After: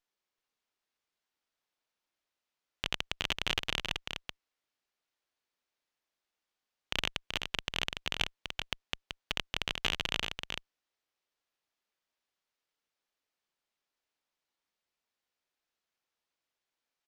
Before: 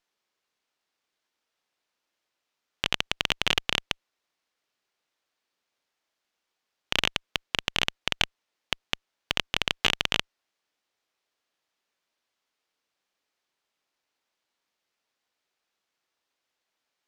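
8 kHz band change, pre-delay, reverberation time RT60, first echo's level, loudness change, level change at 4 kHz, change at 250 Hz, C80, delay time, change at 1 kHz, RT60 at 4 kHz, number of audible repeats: -7.0 dB, none, none, -5.5 dB, -7.5 dB, -7.0 dB, -6.0 dB, none, 0.381 s, -7.0 dB, none, 1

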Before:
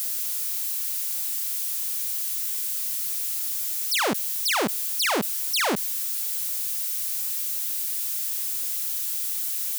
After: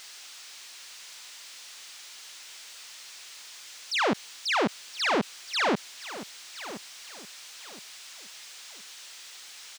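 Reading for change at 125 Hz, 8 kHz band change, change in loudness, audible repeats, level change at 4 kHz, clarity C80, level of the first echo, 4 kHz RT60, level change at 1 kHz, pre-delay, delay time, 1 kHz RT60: 0.0 dB, -14.0 dB, -9.0 dB, 3, -4.0 dB, none, -14.5 dB, none, -0.5 dB, none, 1.019 s, none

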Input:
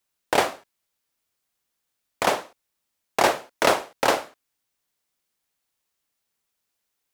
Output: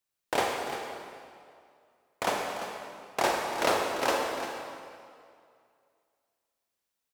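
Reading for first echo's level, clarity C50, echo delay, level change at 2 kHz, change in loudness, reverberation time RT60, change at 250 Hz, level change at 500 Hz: -11.0 dB, 1.0 dB, 0.345 s, -5.5 dB, -7.0 dB, 2.3 s, -4.5 dB, -5.0 dB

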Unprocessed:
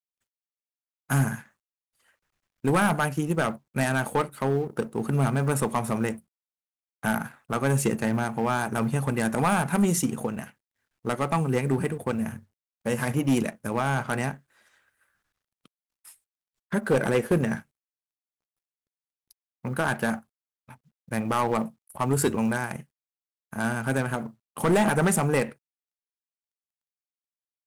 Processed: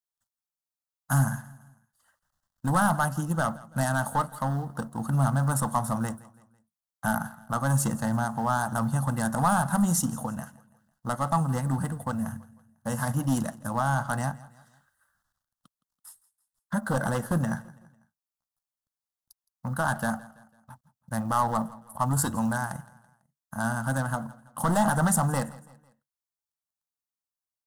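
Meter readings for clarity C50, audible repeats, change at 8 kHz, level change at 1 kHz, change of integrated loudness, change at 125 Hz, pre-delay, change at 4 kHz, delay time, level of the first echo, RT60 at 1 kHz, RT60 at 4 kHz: none, 3, +1.5 dB, +1.5 dB, -1.5 dB, +0.5 dB, none, -4.5 dB, 0.166 s, -20.5 dB, none, none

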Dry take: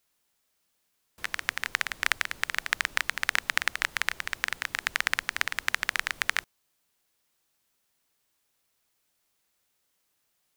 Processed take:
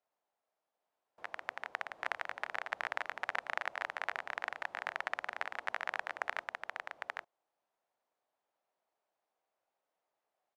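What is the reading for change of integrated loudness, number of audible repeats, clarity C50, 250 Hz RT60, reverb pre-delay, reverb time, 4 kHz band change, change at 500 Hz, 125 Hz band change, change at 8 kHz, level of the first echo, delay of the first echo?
-11.0 dB, 1, none, none, none, none, -17.0 dB, +1.5 dB, under -15 dB, -24.0 dB, -3.0 dB, 0.804 s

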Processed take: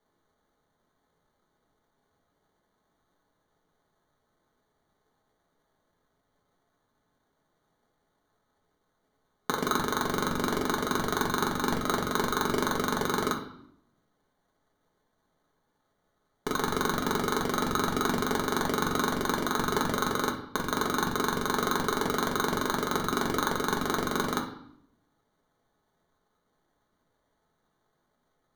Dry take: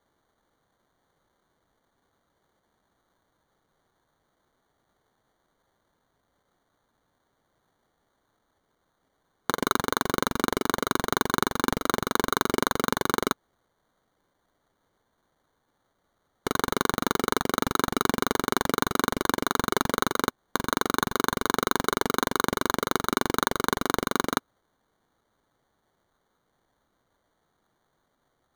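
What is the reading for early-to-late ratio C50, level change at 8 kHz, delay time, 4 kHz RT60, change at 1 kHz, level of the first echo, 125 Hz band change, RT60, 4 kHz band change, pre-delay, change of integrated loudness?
8.5 dB, -3.0 dB, none, 0.60 s, -2.5 dB, none, -0.5 dB, 0.70 s, -3.0 dB, 5 ms, -2.0 dB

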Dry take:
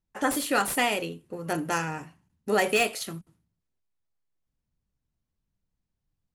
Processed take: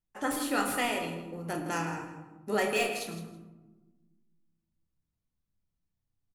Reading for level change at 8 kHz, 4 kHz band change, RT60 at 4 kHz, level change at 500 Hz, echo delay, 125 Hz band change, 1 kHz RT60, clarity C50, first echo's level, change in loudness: -5.5 dB, -5.0 dB, 0.60 s, -4.5 dB, 0.161 s, -2.5 dB, 1.1 s, 6.0 dB, -12.0 dB, -4.5 dB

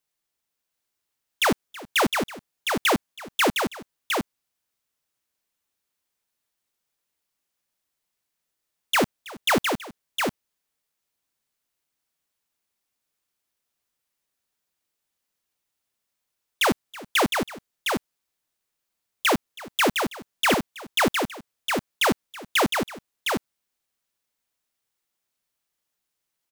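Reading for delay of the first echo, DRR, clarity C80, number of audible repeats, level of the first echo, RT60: 0.325 s, none, none, 2, -19.5 dB, none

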